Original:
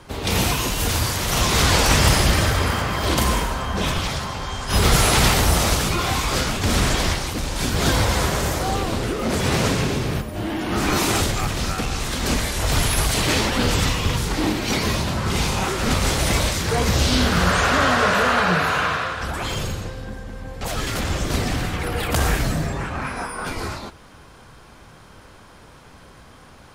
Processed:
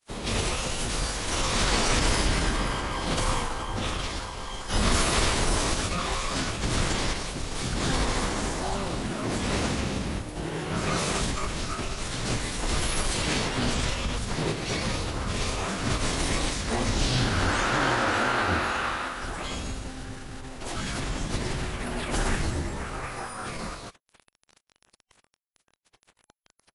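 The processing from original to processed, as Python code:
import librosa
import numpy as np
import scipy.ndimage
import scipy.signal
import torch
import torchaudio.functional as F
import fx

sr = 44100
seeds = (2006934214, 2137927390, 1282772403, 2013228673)

y = fx.quant_dither(x, sr, seeds[0], bits=6, dither='none')
y = fx.pitch_keep_formants(y, sr, semitones=-12.0)
y = y * librosa.db_to_amplitude(-5.0)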